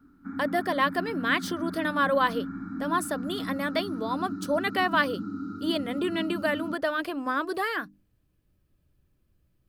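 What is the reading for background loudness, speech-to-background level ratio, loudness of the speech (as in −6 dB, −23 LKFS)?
−36.0 LKFS, 7.5 dB, −28.5 LKFS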